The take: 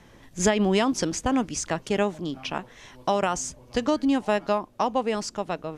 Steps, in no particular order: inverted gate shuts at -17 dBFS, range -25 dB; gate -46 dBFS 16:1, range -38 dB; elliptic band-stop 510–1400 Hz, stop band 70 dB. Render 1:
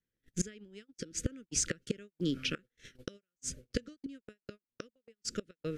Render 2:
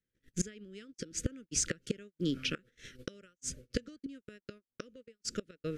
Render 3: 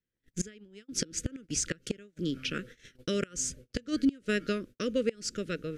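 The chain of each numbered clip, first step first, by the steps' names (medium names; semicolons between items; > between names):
inverted gate > elliptic band-stop > gate; inverted gate > gate > elliptic band-stop; elliptic band-stop > inverted gate > gate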